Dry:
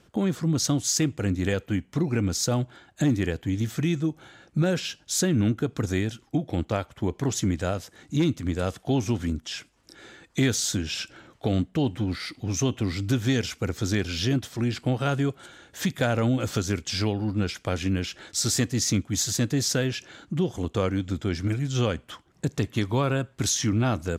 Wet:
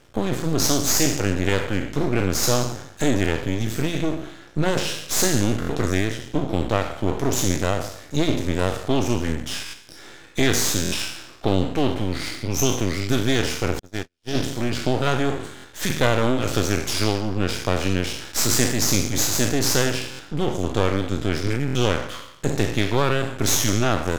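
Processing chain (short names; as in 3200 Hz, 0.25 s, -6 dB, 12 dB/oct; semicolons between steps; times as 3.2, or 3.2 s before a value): spectral trails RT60 0.77 s; de-hum 172.7 Hz, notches 30; 13.79–14.35 gate -20 dBFS, range -56 dB; bell 190 Hz -7.5 dB 0.35 oct; half-wave rectifier; stuck buffer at 5.6/9.64/10.83/15.55/20.1/21.66, samples 1024, times 3; gain +6.5 dB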